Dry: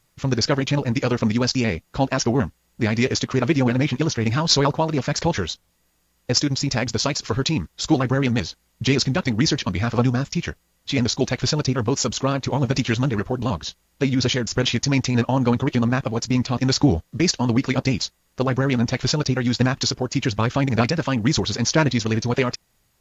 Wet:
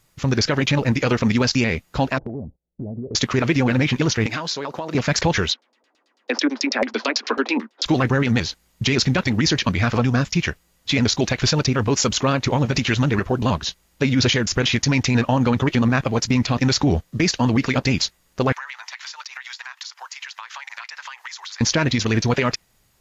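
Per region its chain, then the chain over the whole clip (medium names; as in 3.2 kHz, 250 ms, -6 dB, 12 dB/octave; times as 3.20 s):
2.18–3.15 s: steep low-pass 680 Hz + compression 10:1, threshold -30 dBFS + gate -59 dBFS, range -20 dB
4.26–4.95 s: high-pass 260 Hz + compression 20:1, threshold -26 dBFS
5.51–7.86 s: steep high-pass 220 Hz 96 dB/octave + LFO low-pass saw down 9.1 Hz 500–5500 Hz
18.52–21.61 s: elliptic high-pass 920 Hz, stop band 80 dB + peaking EQ 1.9 kHz +5.5 dB 0.37 oct + compression 16:1, threshold -34 dBFS
whole clip: dynamic bell 2.1 kHz, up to +5 dB, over -38 dBFS, Q 1; peak limiter -12.5 dBFS; trim +3.5 dB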